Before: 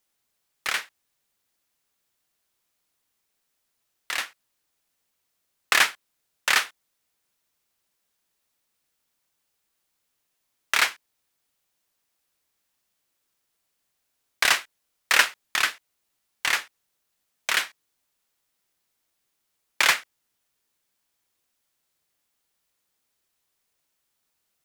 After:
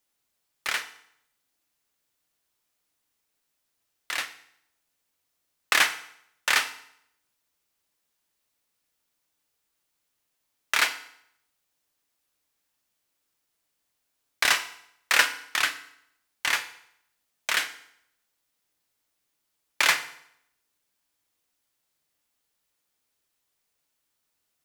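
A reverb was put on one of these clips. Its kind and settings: FDN reverb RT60 0.72 s, low-frequency decay 1×, high-frequency decay 0.9×, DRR 8.5 dB; gain -2 dB

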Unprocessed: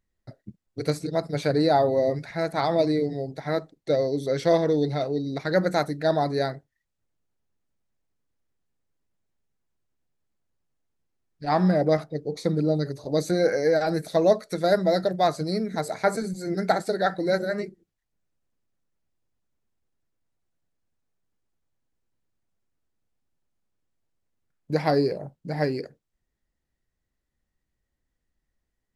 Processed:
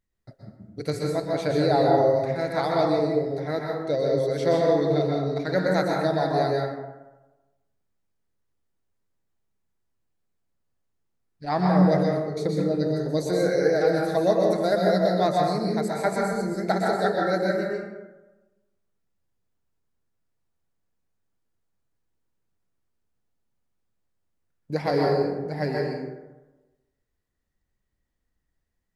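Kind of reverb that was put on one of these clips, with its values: plate-style reverb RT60 1.1 s, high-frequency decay 0.45×, pre-delay 0.11 s, DRR -1.5 dB; gain -3 dB

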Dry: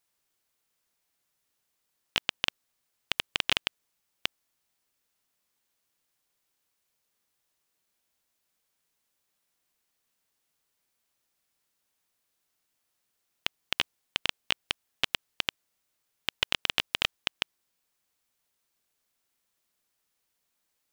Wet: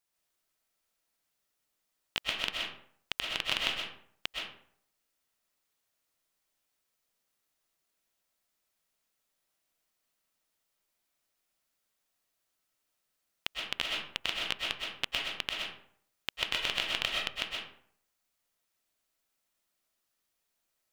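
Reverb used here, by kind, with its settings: digital reverb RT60 0.61 s, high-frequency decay 0.6×, pre-delay 85 ms, DRR -2 dB; gain -5.5 dB

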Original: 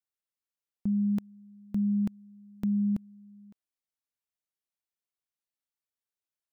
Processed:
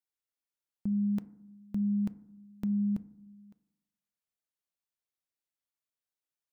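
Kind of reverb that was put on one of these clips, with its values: FDN reverb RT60 0.75 s, low-frequency decay 1.4×, high-frequency decay 0.3×, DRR 14.5 dB; gain -2.5 dB

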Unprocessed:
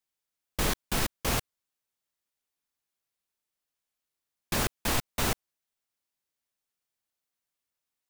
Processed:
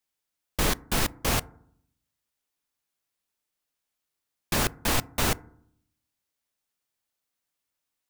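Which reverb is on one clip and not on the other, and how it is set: FDN reverb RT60 0.65 s, low-frequency decay 1.4×, high-frequency decay 0.3×, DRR 18.5 dB; gain +3 dB

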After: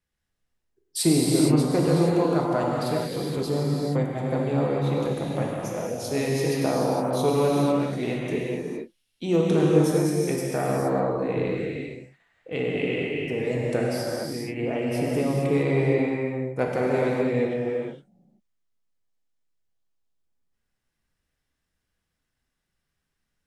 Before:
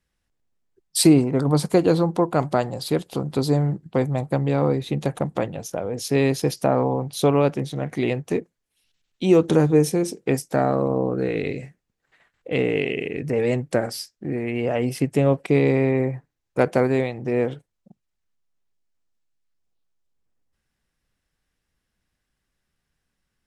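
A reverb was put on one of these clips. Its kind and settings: non-linear reverb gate 0.49 s flat, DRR -4 dB; gain -7.5 dB

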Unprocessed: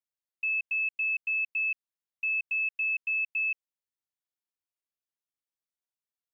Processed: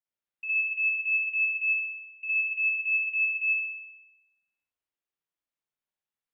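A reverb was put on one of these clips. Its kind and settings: spring tank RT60 1 s, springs 52 ms, chirp 60 ms, DRR -9 dB; gain -6.5 dB

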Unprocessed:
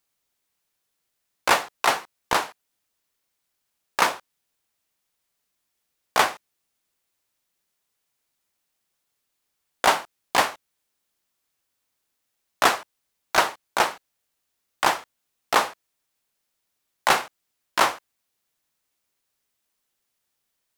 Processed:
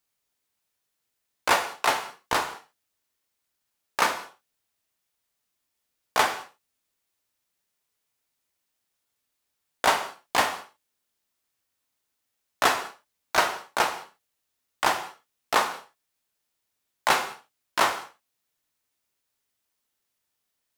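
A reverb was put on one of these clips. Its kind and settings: non-linear reverb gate 0.23 s falling, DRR 6.5 dB; gain -3 dB

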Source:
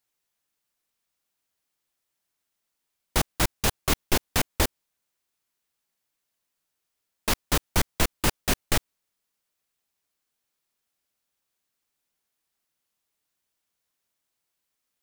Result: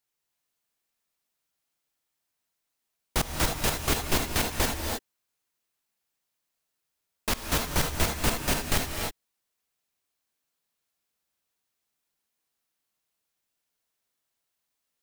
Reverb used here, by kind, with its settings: non-linear reverb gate 0.34 s rising, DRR 1.5 dB; gain -3 dB

